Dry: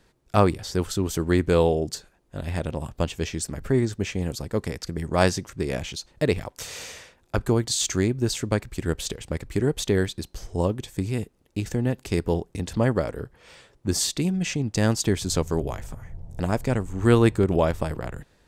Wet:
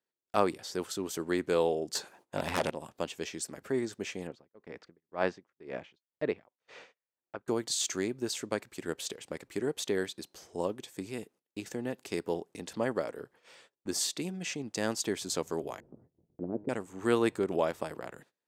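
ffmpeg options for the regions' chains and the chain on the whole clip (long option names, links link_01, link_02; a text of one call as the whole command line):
ffmpeg -i in.wav -filter_complex "[0:a]asettb=1/sr,asplit=3[link_01][link_02][link_03];[link_01]atrim=end=1.954[link_04];[link_02]atrim=start=1.95:end=2.7,asetpts=PTS-STARTPTS,afade=type=in:duration=0.004:curve=qsin,afade=type=out:start_time=0.746:duration=0.004:curve=qsin,equalizer=frequency=900:width=2.4:gain=6,aeval=exprs='0.188*sin(PI/2*2.82*val(0)/0.188)':channel_layout=same[link_05];[link_03]atrim=start=2.696[link_06];[link_04][link_05]acrossfade=duration=0.004:curve1=hsin:curve2=qsin[link_07];[link_07][link_06]acrossfade=duration=0.004:curve1=qsin:curve2=hsin,asettb=1/sr,asplit=3[link_08][link_09][link_10];[link_08]atrim=end=4.274[link_11];[link_09]atrim=start=4.27:end=7.48,asetpts=PTS-STARTPTS,afade=type=in:duration=0.004:curve=qsin,afade=type=out:start_time=3.206:duration=0.004:curve=qsin,lowpass=2300,aeval=exprs='val(0)*pow(10,-25*(0.5-0.5*cos(2*PI*2*n/s))/20)':channel_layout=same[link_12];[link_10]atrim=start=7.476[link_13];[link_11][link_12]acrossfade=duration=0.004:curve1=hsin:curve2=qsin[link_14];[link_14][link_13]acrossfade=duration=0.004:curve1=qsin:curve2=hsin,asettb=1/sr,asplit=3[link_15][link_16][link_17];[link_15]atrim=end=15.804[link_18];[link_16]atrim=start=15.8:end=16.69,asetpts=PTS-STARTPTS,afade=type=in:duration=0.004:curve=qsin,afade=type=out:start_time=0.886:duration=0.004:curve=qsin,lowpass=frequency=340:width_type=q:width=2,bandreject=frequency=103.1:width_type=h:width=4,bandreject=frequency=206.2:width_type=h:width=4,bandreject=frequency=309.3:width_type=h:width=4,bandreject=frequency=412.4:width_type=h:width=4,bandreject=frequency=515.5:width_type=h:width=4,bandreject=frequency=618.6:width_type=h:width=4,bandreject=frequency=721.7:width_type=h:width=4,bandreject=frequency=824.8:width_type=h:width=4,bandreject=frequency=927.9:width_type=h:width=4,bandreject=frequency=1031:width_type=h:width=4,bandreject=frequency=1134.1:width_type=h:width=4,bandreject=frequency=1237.2:width_type=h:width=4,bandreject=frequency=1340.3:width_type=h:width=4,bandreject=frequency=1443.4:width_type=h:width=4,bandreject=frequency=1546.5:width_type=h:width=4,bandreject=frequency=1649.6:width_type=h:width=4,bandreject=frequency=1752.7:width_type=h:width=4,bandreject=frequency=1855.8:width_type=h:width=4,bandreject=frequency=1958.9:width_type=h:width=4,bandreject=frequency=2062:width_type=h:width=4,bandreject=frequency=2165.1:width_type=h:width=4,bandreject=frequency=2268.2:width_type=h:width=4,bandreject=frequency=2371.3:width_type=h:width=4,bandreject=frequency=2474.4:width_type=h:width=4,bandreject=frequency=2577.5:width_type=h:width=4,bandreject=frequency=2680.6:width_type=h:width=4,bandreject=frequency=2783.7:width_type=h:width=4,bandreject=frequency=2886.8:width_type=h:width=4,bandreject=frequency=2989.9:width_type=h:width=4,bandreject=frequency=3093:width_type=h:width=4,bandreject=frequency=3196.1:width_type=h:width=4,bandreject=frequency=3299.2:width_type=h:width=4,bandreject=frequency=3402.3:width_type=h:width=4,bandreject=frequency=3505.4:width_type=h:width=4,bandreject=frequency=3608.5:width_type=h:width=4,bandreject=frequency=3711.6:width_type=h:width=4,bandreject=frequency=3814.7:width_type=h:width=4,bandreject=frequency=3917.8:width_type=h:width=4,bandreject=frequency=4020.9:width_type=h:width=4,bandreject=frequency=4124:width_type=h:width=4[link_19];[link_17]atrim=start=16.686[link_20];[link_18][link_19]acrossfade=duration=0.004:curve1=hsin:curve2=qsin[link_21];[link_21][link_20]acrossfade=duration=0.004:curve1=qsin:curve2=hsin,highpass=280,agate=range=-22dB:threshold=-52dB:ratio=16:detection=peak,volume=-6.5dB" out.wav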